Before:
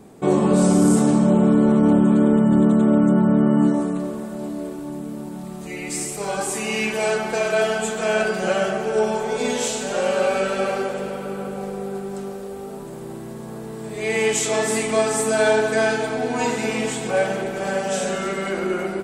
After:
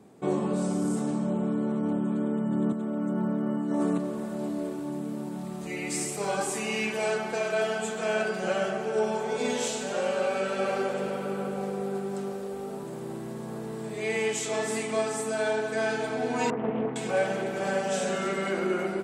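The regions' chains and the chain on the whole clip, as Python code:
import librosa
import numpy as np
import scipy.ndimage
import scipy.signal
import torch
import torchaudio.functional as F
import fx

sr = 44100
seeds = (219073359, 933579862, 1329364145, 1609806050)

y = fx.chain(x, sr, fx.highpass(hz=150.0, slope=12),
    fx.over_compress(threshold_db=-22.0, ratio=-1.0),
    fx.quant_float(bits=6), at=(2.72, 3.98))
y = fx.chain(y, sr, fx.bessel_lowpass(hz=980.0, order=4),
    fx.doppler_dist(depth_ms=0.48), at=(16.5, 16.96))
y = scipy.signal.sosfilt(scipy.signal.butter(2, 90.0, 'highpass', fs=sr, output='sos'), y)
y = fx.rider(y, sr, range_db=5, speed_s=0.5)
y = fx.high_shelf(y, sr, hz=9900.0, db=-6.0)
y = y * librosa.db_to_amplitude(-7.5)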